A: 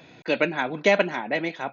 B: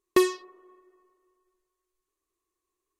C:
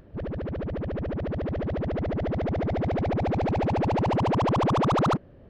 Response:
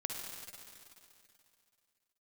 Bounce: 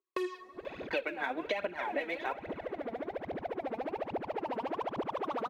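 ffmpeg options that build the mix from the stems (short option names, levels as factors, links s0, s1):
-filter_complex "[0:a]alimiter=limit=0.266:level=0:latency=1:release=140,adelay=650,volume=1.06,asplit=2[s0][s1];[s1]volume=0.133[s2];[1:a]dynaudnorm=f=150:g=5:m=2.99,volume=0.282,asplit=2[s3][s4];[s4]volume=0.106[s5];[2:a]adelay=400,volume=0.316,asplit=2[s6][s7];[s7]volume=0.141[s8];[3:a]atrim=start_sample=2205[s9];[s2][s5][s8]amix=inputs=3:normalize=0[s10];[s10][s9]afir=irnorm=-1:irlink=0[s11];[s0][s3][s6][s11]amix=inputs=4:normalize=0,acrossover=split=280 3900:gain=0.0708 1 0.178[s12][s13][s14];[s12][s13][s14]amix=inputs=3:normalize=0,aphaser=in_gain=1:out_gain=1:delay=4.6:decay=0.62:speed=1.2:type=triangular,acompressor=threshold=0.0282:ratio=8"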